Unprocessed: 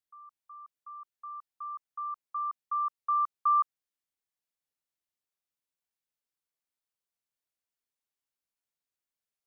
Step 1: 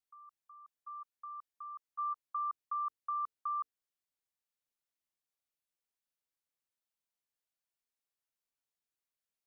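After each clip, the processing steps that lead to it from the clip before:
in parallel at 0 dB: brickwall limiter −31 dBFS, peak gain reduction 11 dB
on the sum: mains-hum notches 50/100/150/200/250/300/350/400/450 Hz
output level in coarse steps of 10 dB
level −5 dB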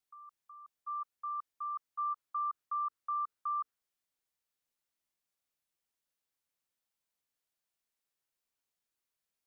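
dynamic equaliser 1,300 Hz, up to +8 dB, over −51 dBFS, Q 2.2
brickwall limiter −33.5 dBFS, peak gain reduction 10.5 dB
level +3 dB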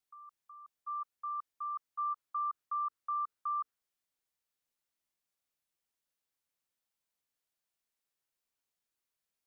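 no processing that can be heard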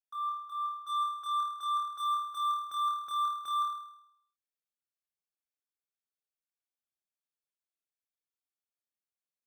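leveller curve on the samples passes 5
notch comb filter 980 Hz
flutter between parallel walls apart 4.5 metres, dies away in 0.76 s
level −6 dB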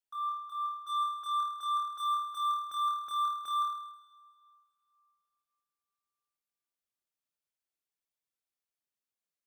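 dense smooth reverb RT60 3 s, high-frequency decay 0.8×, DRR 19 dB

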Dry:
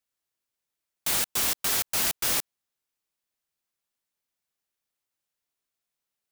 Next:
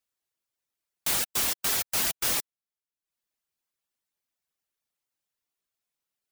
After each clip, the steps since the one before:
reverb reduction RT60 0.65 s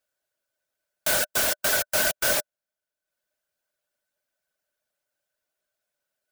hollow resonant body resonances 600/1,500 Hz, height 17 dB, ringing for 40 ms
level +2 dB

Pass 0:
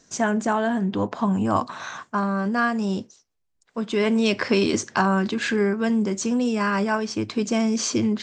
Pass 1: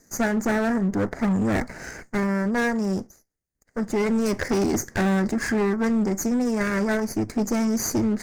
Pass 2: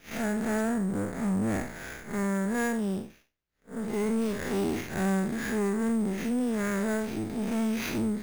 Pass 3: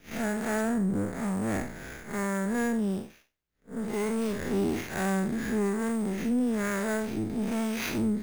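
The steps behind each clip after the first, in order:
lower of the sound and its delayed copy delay 0.45 ms; flat-topped bell 3,200 Hz −15.5 dB 1 octave; hard clipping −19.5 dBFS, distortion −14 dB; level +1.5 dB
spectrum smeared in time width 122 ms; in parallel at 0 dB: downward compressor, threshold −31 dBFS, peak gain reduction 10.5 dB; on the sum: sample-rate reduction 8,600 Hz, jitter 0%; level −7 dB
two-band tremolo in antiphase 1.1 Hz, depth 50%, crossover 460 Hz; level +2.5 dB

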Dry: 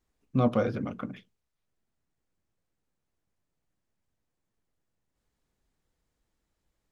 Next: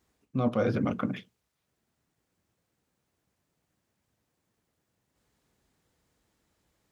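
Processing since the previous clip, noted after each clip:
high-pass filter 73 Hz
reversed playback
downward compressor 5 to 1, threshold −32 dBFS, peak gain reduction 12 dB
reversed playback
level +8 dB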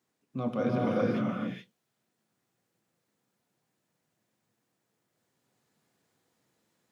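high-pass filter 120 Hz 24 dB per octave
reverb whose tail is shaped and stops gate 450 ms rising, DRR −4 dB
level −5.5 dB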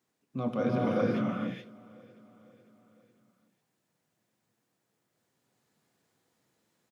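repeating echo 501 ms, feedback 56%, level −23 dB

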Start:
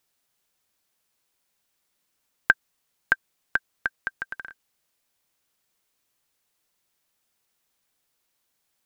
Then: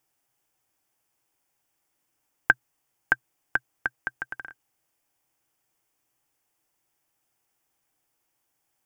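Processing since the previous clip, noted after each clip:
thirty-one-band graphic EQ 125 Hz +8 dB, 200 Hz −5 dB, 315 Hz +7 dB, 800 Hz +7 dB, 4,000 Hz −12 dB
level −1 dB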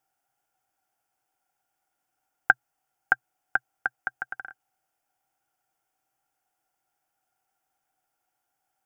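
hollow resonant body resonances 760/1,400 Hz, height 15 dB, ringing for 30 ms
level −6 dB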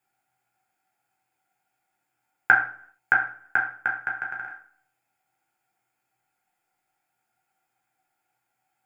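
convolution reverb RT60 0.55 s, pre-delay 3 ms, DRR −2 dB
level −2 dB

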